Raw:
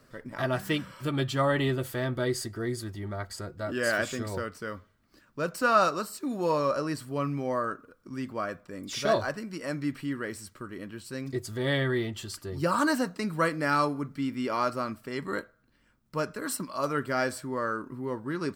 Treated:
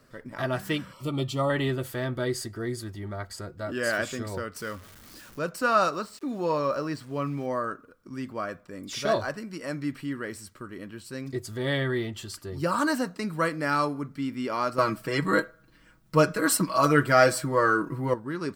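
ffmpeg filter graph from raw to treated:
ffmpeg -i in.wav -filter_complex "[0:a]asettb=1/sr,asplit=3[link_01][link_02][link_03];[link_01]atrim=end=0.934[link_04];[link_02]atrim=start=0.93:end=1.5,asetpts=PTS-STARTPTS,afade=type=in:duration=0.004:curve=qsin,afade=type=out:start_time=0.566:duration=0.004:curve=qsin,asuperstop=centerf=1600:order=20:qfactor=5.8,equalizer=frequency=1800:width_type=o:width=0.59:gain=-10[link_05];[link_03]atrim=start=1.496[link_06];[link_04][link_05]acrossfade=duration=0.004:curve1=hsin:curve2=qsin[link_07];[link_07][link_06]acrossfade=duration=0.004:curve1=qsin:curve2=hsin,asettb=1/sr,asplit=3[link_08][link_09][link_10];[link_08]atrim=end=4.564[link_11];[link_09]atrim=start=4.56:end=5.39,asetpts=PTS-STARTPTS,afade=type=in:duration=0.004:curve=qsin,afade=type=out:start_time=0.826:duration=0.004:curve=qsin,aeval=exprs='val(0)+0.5*0.00447*sgn(val(0))':channel_layout=same,highshelf=frequency=3700:gain=8[link_12];[link_10]atrim=start=5.386[link_13];[link_11][link_12]acrossfade=duration=0.004:curve1=hsin:curve2=qsin[link_14];[link_14][link_13]acrossfade=duration=0.004:curve1=qsin:curve2=hsin,asettb=1/sr,asplit=3[link_15][link_16][link_17];[link_15]atrim=end=5.934[link_18];[link_16]atrim=start=5.93:end=7.46,asetpts=PTS-STARTPTS,afade=type=in:duration=0.004:curve=qsin,afade=type=out:start_time=1.526:duration=0.004:curve=qsin,lowpass=6000,aeval=exprs='val(0)*gte(abs(val(0)),0.00335)':channel_layout=same[link_19];[link_17]atrim=start=7.456[link_20];[link_18][link_19]acrossfade=duration=0.004:curve1=hsin:curve2=qsin[link_21];[link_21][link_20]acrossfade=duration=0.004:curve1=qsin:curve2=hsin,asettb=1/sr,asplit=3[link_22][link_23][link_24];[link_22]atrim=end=14.784[link_25];[link_23]atrim=start=14.78:end=18.14,asetpts=PTS-STARTPTS,afade=type=in:duration=0.004:curve=qsin,afade=type=out:start_time=3.356:duration=0.004:curve=qsin,acontrast=82,aecho=1:1:6.2:0.79,atrim=end_sample=148176[link_26];[link_24]atrim=start=18.136[link_27];[link_25][link_26]acrossfade=duration=0.004:curve1=hsin:curve2=qsin[link_28];[link_28][link_27]acrossfade=duration=0.004:curve1=qsin:curve2=hsin" out.wav

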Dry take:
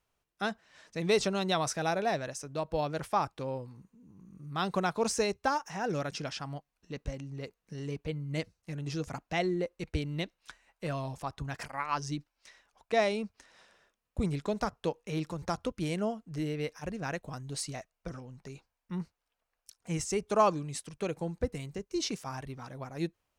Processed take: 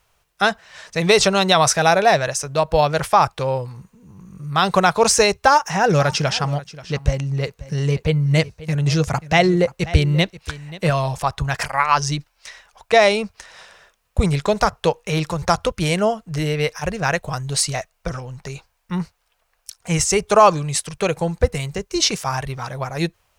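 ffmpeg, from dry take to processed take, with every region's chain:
ffmpeg -i in.wav -filter_complex "[0:a]asettb=1/sr,asplit=3[link_01][link_02][link_03];[link_01]atrim=end=5.464[link_04];[link_02]atrim=start=5.46:end=10.9,asetpts=PTS-STARTPTS,afade=type=in:duration=0.004:curve=qsin,afade=type=out:start_time=5.436:duration=0.004:curve=qsin,highpass=frequency=110:poles=1,lowshelf=frequency=260:gain=9,aecho=1:1:533:0.133,atrim=end_sample=239904[link_05];[link_03]atrim=start=10.896[link_06];[link_04][link_05]acrossfade=duration=0.004:curve1=hsin:curve2=qsin[link_07];[link_07][link_06]acrossfade=duration=0.004:curve1=qsin:curve2=hsin,equalizer=frequency=270:width=1.6:gain=-13.5,alimiter=level_in=18.5dB:limit=-1dB:release=50:level=0:latency=1,volume=-1dB" out.wav

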